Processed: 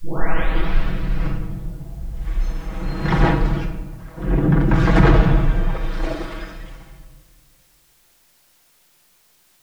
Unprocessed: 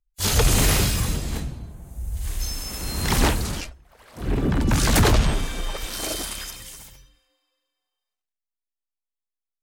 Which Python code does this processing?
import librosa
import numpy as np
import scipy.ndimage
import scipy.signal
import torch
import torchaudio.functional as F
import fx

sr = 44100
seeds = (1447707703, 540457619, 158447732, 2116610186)

y = fx.tape_start_head(x, sr, length_s=1.9)
y = scipy.signal.sosfilt(scipy.signal.butter(2, 1800.0, 'lowpass', fs=sr, output='sos'), y)
y = y + 0.85 * np.pad(y, (int(6.2 * sr / 1000.0), 0))[:len(y)]
y = fx.quant_dither(y, sr, seeds[0], bits=10, dither='triangular')
y = fx.room_shoebox(y, sr, seeds[1], volume_m3=780.0, walls='mixed', distance_m=0.9)
y = F.gain(torch.from_numpy(y), 1.5).numpy()